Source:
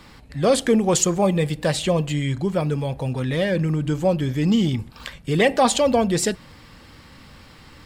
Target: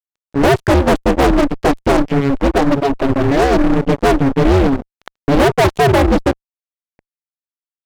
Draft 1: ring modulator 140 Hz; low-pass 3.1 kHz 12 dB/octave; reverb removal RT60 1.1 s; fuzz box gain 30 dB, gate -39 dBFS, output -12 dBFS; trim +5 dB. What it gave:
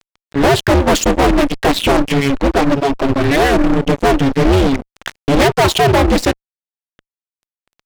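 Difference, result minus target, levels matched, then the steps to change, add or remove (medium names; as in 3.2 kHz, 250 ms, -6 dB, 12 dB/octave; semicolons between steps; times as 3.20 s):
4 kHz band +6.0 dB
change: low-pass 980 Hz 12 dB/octave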